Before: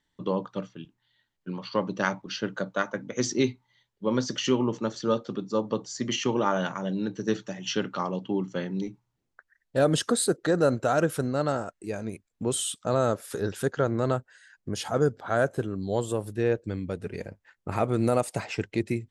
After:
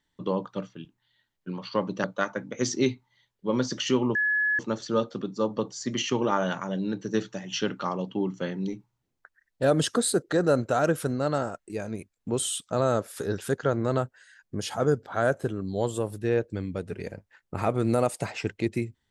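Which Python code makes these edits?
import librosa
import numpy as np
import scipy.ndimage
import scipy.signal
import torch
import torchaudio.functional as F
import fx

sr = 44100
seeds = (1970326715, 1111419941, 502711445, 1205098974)

y = fx.edit(x, sr, fx.cut(start_s=2.04, length_s=0.58),
    fx.insert_tone(at_s=4.73, length_s=0.44, hz=1700.0, db=-21.5), tone=tone)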